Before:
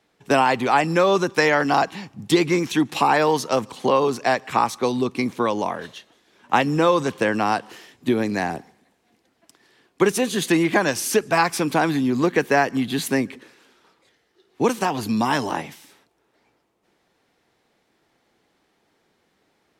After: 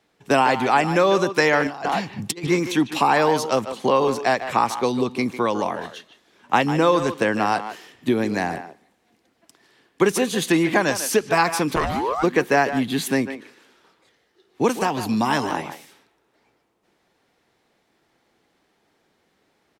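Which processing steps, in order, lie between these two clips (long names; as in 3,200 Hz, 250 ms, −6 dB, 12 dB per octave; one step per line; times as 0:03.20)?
far-end echo of a speakerphone 150 ms, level −10 dB
0:01.67–0:02.47: compressor whose output falls as the input rises −25 dBFS, ratio −0.5
0:11.75–0:12.22: ring modulation 270 Hz → 1,100 Hz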